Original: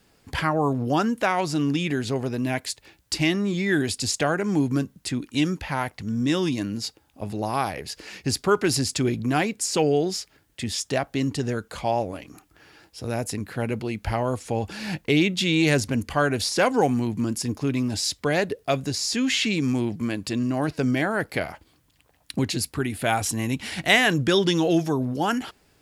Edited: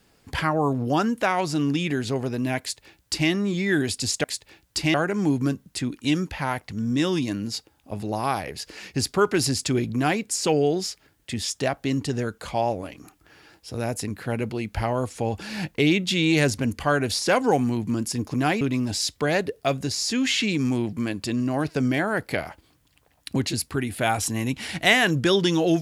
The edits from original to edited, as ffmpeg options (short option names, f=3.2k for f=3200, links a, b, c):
-filter_complex "[0:a]asplit=5[a][b][c][d][e];[a]atrim=end=4.242[f];[b]atrim=start=2.598:end=3.302[g];[c]atrim=start=4.238:end=17.642[h];[d]atrim=start=9.238:end=9.512[i];[e]atrim=start=17.638[j];[f][g]acrossfade=d=0.004:c1=hsin:c2=hsin[k];[k][h]acrossfade=d=0.004:c1=hsin:c2=hsin[l];[l][i]acrossfade=d=0.004:c1=hsin:c2=hsin[m];[m][j]acrossfade=d=0.004:c1=hsin:c2=hsin"